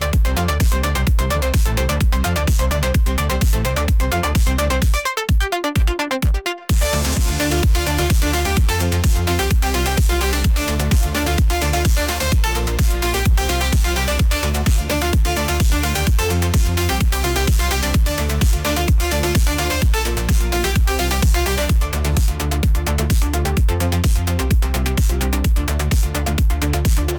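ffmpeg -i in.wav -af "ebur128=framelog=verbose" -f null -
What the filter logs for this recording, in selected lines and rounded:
Integrated loudness:
  I:         -18.1 LUFS
  Threshold: -28.1 LUFS
Loudness range:
  LRA:         1.0 LU
  Threshold: -38.1 LUFS
  LRA low:   -18.6 LUFS
  LRA high:  -17.6 LUFS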